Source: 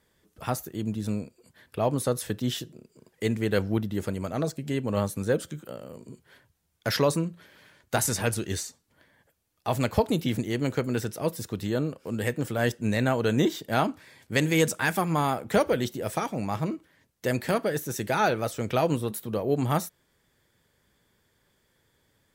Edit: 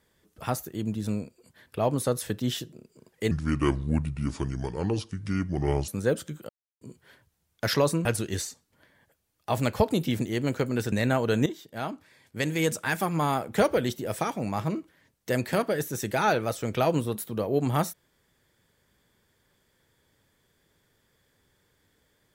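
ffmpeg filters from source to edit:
ffmpeg -i in.wav -filter_complex "[0:a]asplit=8[link_01][link_02][link_03][link_04][link_05][link_06][link_07][link_08];[link_01]atrim=end=3.314[link_09];[link_02]atrim=start=3.31:end=5.11,asetpts=PTS-STARTPTS,asetrate=30870,aresample=44100[link_10];[link_03]atrim=start=5.106:end=5.72,asetpts=PTS-STARTPTS,afade=type=out:start_time=0.61:duration=0.004:curve=hsin[link_11];[link_04]atrim=start=5.72:end=6.04,asetpts=PTS-STARTPTS,volume=0[link_12];[link_05]atrim=start=6.04:end=7.282,asetpts=PTS-STARTPTS,afade=type=in:duration=0.004:curve=hsin[link_13];[link_06]atrim=start=8.228:end=11.102[link_14];[link_07]atrim=start=12.878:end=13.42,asetpts=PTS-STARTPTS,afade=type=out:start_time=0.538:duration=0.004:curve=hsin:silence=0.223872[link_15];[link_08]atrim=start=13.42,asetpts=PTS-STARTPTS,afade=type=in:duration=1.98:silence=0.223872[link_16];[link_09][link_10]acrossfade=duration=0.004:curve1=hsin:curve2=hsin[link_17];[link_11][link_12][link_13]concat=n=3:v=0:a=1[link_18];[link_17][link_18]acrossfade=duration=0.004:curve1=hsin:curve2=hsin[link_19];[link_19][link_14]acrossfade=duration=0.004:curve1=hsin:curve2=hsin[link_20];[link_15][link_16]concat=n=2:v=0:a=1[link_21];[link_20][link_21]acrossfade=duration=0.004:curve1=hsin:curve2=hsin" out.wav

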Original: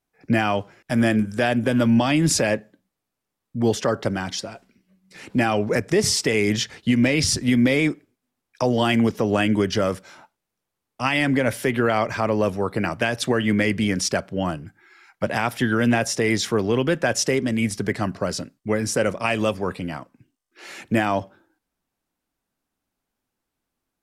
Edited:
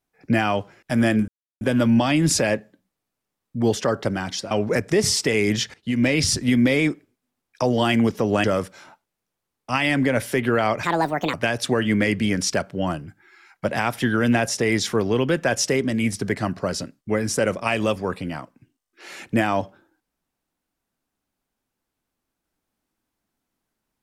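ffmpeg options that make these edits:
ffmpeg -i in.wav -filter_complex "[0:a]asplit=8[link_01][link_02][link_03][link_04][link_05][link_06][link_07][link_08];[link_01]atrim=end=1.28,asetpts=PTS-STARTPTS,afade=type=out:start_time=1.276:duration=0.004:curve=hsin[link_09];[link_02]atrim=start=1.28:end=1.61,asetpts=PTS-STARTPTS,volume=0[link_10];[link_03]atrim=start=1.61:end=4.512,asetpts=PTS-STARTPTS,afade=type=in:duration=0.004:curve=hsin[link_11];[link_04]atrim=start=5.508:end=6.74,asetpts=PTS-STARTPTS,afade=type=out:start_time=1.228:duration=0.004:curve=hsin:silence=0.112202[link_12];[link_05]atrim=start=6.74:end=9.442,asetpts=PTS-STARTPTS,afade=type=in:duration=0.34:silence=0.112202[link_13];[link_06]atrim=start=9.748:end=12.144[link_14];[link_07]atrim=start=12.14:end=12.92,asetpts=PTS-STARTPTS,asetrate=67914,aresample=44100,atrim=end_sample=22336,asetpts=PTS-STARTPTS[link_15];[link_08]atrim=start=12.916[link_16];[link_09][link_10][link_11]concat=n=3:v=0:a=1[link_17];[link_12][link_13]concat=n=2:v=0:a=1[link_18];[link_17][link_18]acrossfade=duration=0.004:curve1=hsin:curve2=hsin[link_19];[link_19][link_14]acrossfade=duration=0.004:curve1=hsin:curve2=hsin[link_20];[link_20][link_15]acrossfade=duration=0.004:curve1=hsin:curve2=hsin[link_21];[link_21][link_16]acrossfade=duration=0.004:curve1=hsin:curve2=hsin" out.wav

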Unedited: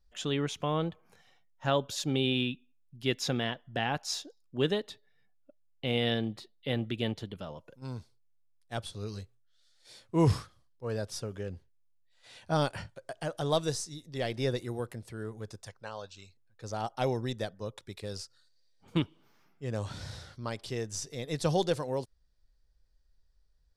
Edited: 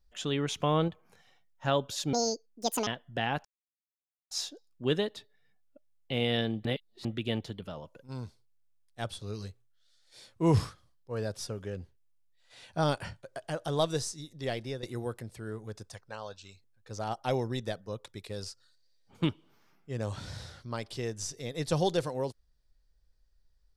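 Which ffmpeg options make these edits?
ffmpeg -i in.wav -filter_complex "[0:a]asplit=9[link_01][link_02][link_03][link_04][link_05][link_06][link_07][link_08][link_09];[link_01]atrim=end=0.482[link_10];[link_02]atrim=start=0.478:end=0.882,asetpts=PTS-STARTPTS,volume=3.5dB[link_11];[link_03]atrim=start=0.878:end=2.134[link_12];[link_04]atrim=start=2.13:end=3.46,asetpts=PTS-STARTPTS,asetrate=79380,aresample=44100[link_13];[link_05]atrim=start=3.456:end=4.04,asetpts=PTS-STARTPTS,afade=type=out:start_time=0.58:duration=0.004:curve=hsin,apad=pad_dur=0.86[link_14];[link_06]atrim=start=4.04:end=6.382,asetpts=PTS-STARTPTS,afade=type=in:duration=0.004:curve=hsin[link_15];[link_07]atrim=start=6.378:end=6.782,asetpts=PTS-STARTPTS,areverse[link_16];[link_08]atrim=start=6.778:end=14.56,asetpts=PTS-STARTPTS,afade=type=out:start_time=7.432:duration=0.35:silence=0.211349[link_17];[link_09]atrim=start=14.56,asetpts=PTS-STARTPTS,afade=type=in:duration=0.004:curve=hsin:silence=0.211349[link_18];[link_10][link_11]acrossfade=duration=0.004:curve1=hsin:curve2=hsin[link_19];[link_19][link_12]acrossfade=duration=0.004:curve1=hsin:curve2=hsin[link_20];[link_20][link_13]acrossfade=duration=0.004:curve1=hsin:curve2=hsin[link_21];[link_14][link_15]concat=n=2:v=0:a=1[link_22];[link_21][link_22]acrossfade=duration=0.004:curve1=hsin:curve2=hsin[link_23];[link_23][link_16]acrossfade=duration=0.004:curve1=hsin:curve2=hsin[link_24];[link_17][link_18]concat=n=2:v=0:a=1[link_25];[link_24][link_25]acrossfade=duration=0.004:curve1=hsin:curve2=hsin" out.wav

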